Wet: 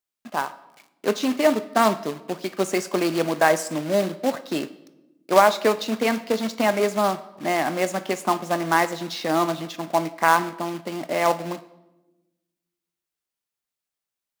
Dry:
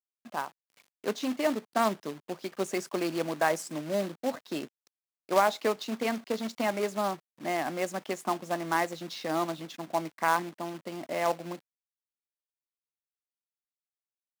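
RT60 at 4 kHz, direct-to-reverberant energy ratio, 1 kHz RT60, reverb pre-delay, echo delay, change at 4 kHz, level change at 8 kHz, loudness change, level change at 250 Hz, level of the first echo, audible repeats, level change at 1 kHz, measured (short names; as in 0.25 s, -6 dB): 0.70 s, 11.5 dB, 0.90 s, 5 ms, none, +8.5 dB, +8.0 dB, +8.0 dB, +8.0 dB, none, none, +8.0 dB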